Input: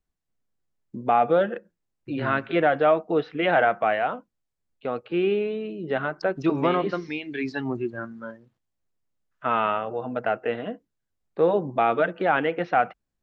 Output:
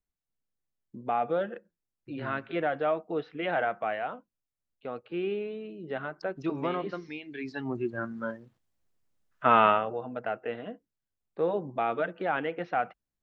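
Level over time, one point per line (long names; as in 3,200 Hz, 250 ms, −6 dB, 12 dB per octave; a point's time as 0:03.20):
0:07.44 −8.5 dB
0:08.23 +3 dB
0:09.68 +3 dB
0:10.09 −7.5 dB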